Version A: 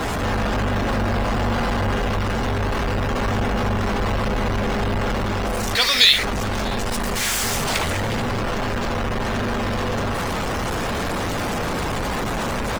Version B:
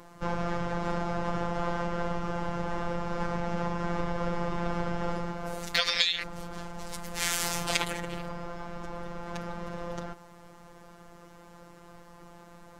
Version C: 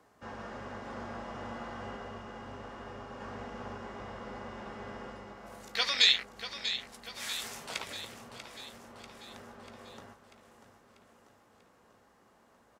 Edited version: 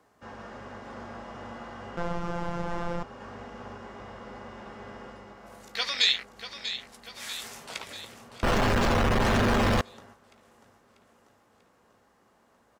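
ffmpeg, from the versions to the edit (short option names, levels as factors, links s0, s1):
-filter_complex "[2:a]asplit=3[s0][s1][s2];[s0]atrim=end=1.972[s3];[1:a]atrim=start=1.968:end=3.032[s4];[s1]atrim=start=3.028:end=8.432[s5];[0:a]atrim=start=8.428:end=9.812[s6];[s2]atrim=start=9.808[s7];[s3][s4]acrossfade=d=0.004:c1=hsin:c2=hsin[s8];[s8][s5]acrossfade=d=0.004:c1=hsin:c2=hsin[s9];[s9][s6]acrossfade=d=0.004:c1=hsin:c2=hsin[s10];[s10][s7]acrossfade=d=0.004:c1=hsin:c2=hsin"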